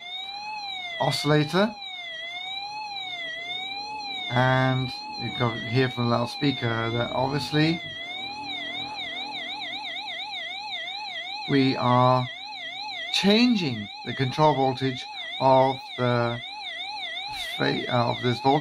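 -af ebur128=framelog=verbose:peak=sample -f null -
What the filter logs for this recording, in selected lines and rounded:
Integrated loudness:
  I:         -25.9 LUFS
  Threshold: -35.8 LUFS
Loudness range:
  LRA:         5.5 LU
  Threshold: -45.8 LUFS
  LRA low:   -28.7 LUFS
  LRA high:  -23.2 LUFS
Sample peak:
  Peak:       -6.3 dBFS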